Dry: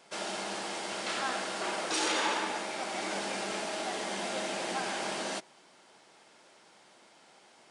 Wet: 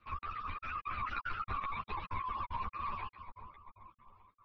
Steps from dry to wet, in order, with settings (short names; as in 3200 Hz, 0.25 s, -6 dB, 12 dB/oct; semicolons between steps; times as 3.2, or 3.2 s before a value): sine-wave speech; Doppler pass-by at 2.83, 11 m/s, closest 5.8 m; compressor 10:1, threshold -46 dBFS, peak gain reduction 17 dB; LPC vocoder at 8 kHz whisper; frequency shift -64 Hz; synth low-pass 1100 Hz, resonance Q 1.7; tilt -3 dB/oct; split-band echo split 590 Hz, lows 0.682 s, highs 0.234 s, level -7.5 dB; step gate "xxx.xxxxxx." 152 bpm -60 dB; speed mistake 45 rpm record played at 78 rpm; reverb removal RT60 0.79 s; ensemble effect; gain +10 dB